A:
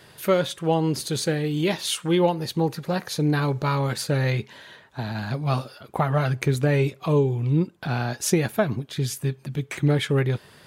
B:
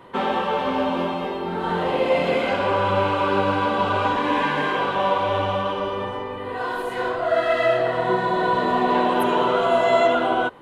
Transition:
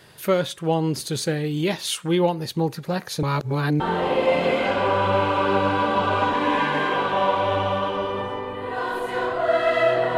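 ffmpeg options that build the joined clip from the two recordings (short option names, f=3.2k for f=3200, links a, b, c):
-filter_complex "[0:a]apad=whole_dur=10.17,atrim=end=10.17,asplit=2[a][b];[a]atrim=end=3.232[c];[b]atrim=start=3.228:end=3.802,asetpts=PTS-STARTPTS,areverse[d];[1:a]atrim=start=1.628:end=8[e];[c][d]acrossfade=d=0.004:c1=hsin:c2=hsin[f];[f][e]acrossfade=d=0.004:c1=hsin:c2=hsin"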